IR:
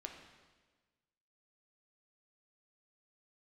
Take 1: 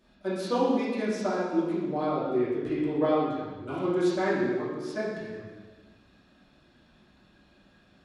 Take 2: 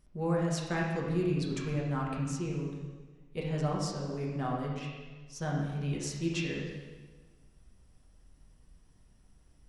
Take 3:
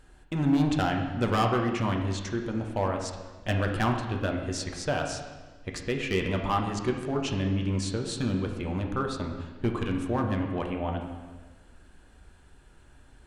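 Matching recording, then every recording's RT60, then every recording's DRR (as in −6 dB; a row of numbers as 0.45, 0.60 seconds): 3; 1.4, 1.4, 1.4 seconds; −12.0, −3.5, 2.0 decibels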